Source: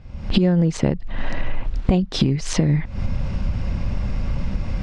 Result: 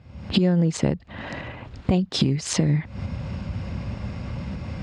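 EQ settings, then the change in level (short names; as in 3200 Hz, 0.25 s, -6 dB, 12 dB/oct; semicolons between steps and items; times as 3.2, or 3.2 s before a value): HPF 70 Hz 24 dB/oct; notch 5900 Hz, Q 13; dynamic EQ 7500 Hz, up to +6 dB, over -44 dBFS, Q 0.71; -2.5 dB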